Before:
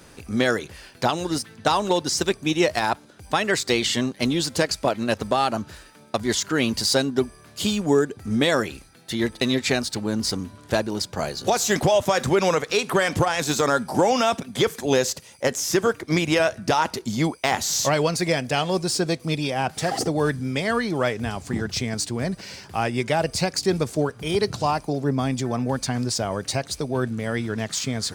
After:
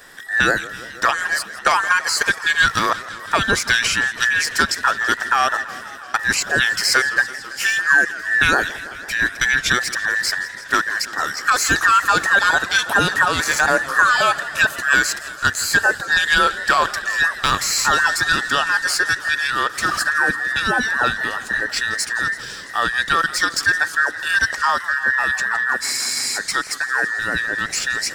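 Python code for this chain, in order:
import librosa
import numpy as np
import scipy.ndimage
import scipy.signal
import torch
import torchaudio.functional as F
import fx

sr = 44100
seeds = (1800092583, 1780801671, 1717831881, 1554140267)

y = fx.band_invert(x, sr, width_hz=2000)
y = fx.spec_freeze(y, sr, seeds[0], at_s=25.84, hold_s=0.53)
y = fx.echo_warbled(y, sr, ms=166, feedback_pct=79, rate_hz=2.8, cents=186, wet_db=-17.0)
y = y * librosa.db_to_amplitude(4.0)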